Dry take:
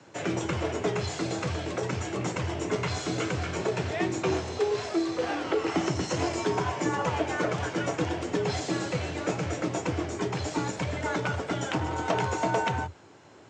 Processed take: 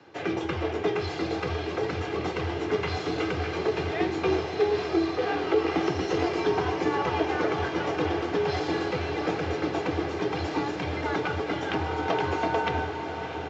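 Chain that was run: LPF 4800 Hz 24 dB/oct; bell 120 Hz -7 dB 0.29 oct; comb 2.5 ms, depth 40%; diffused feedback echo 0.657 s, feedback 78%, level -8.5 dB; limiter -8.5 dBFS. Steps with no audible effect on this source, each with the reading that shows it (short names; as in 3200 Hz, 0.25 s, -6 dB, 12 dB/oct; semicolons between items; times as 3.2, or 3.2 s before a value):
limiter -8.5 dBFS: input peak -11.5 dBFS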